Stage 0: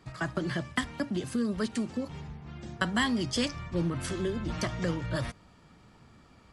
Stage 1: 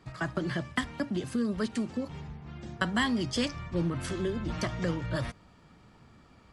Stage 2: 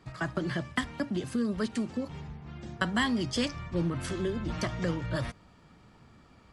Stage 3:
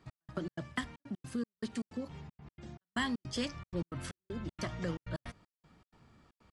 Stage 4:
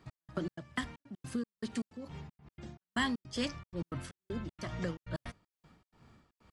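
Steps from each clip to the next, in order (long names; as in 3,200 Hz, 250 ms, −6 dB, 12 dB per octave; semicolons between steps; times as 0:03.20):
high-shelf EQ 5,900 Hz −4.5 dB
no processing that can be heard
gate pattern "x..xx.xxxx.x.x" 157 BPM −60 dB; level −6 dB
amplitude tremolo 2.3 Hz, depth 69%; level +2.5 dB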